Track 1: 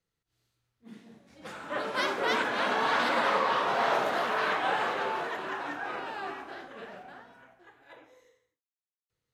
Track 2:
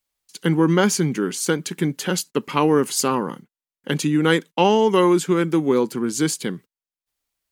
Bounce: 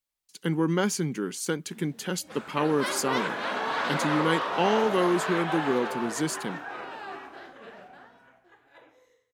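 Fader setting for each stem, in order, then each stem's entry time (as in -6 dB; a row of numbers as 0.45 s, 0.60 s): -2.0 dB, -8.0 dB; 0.85 s, 0.00 s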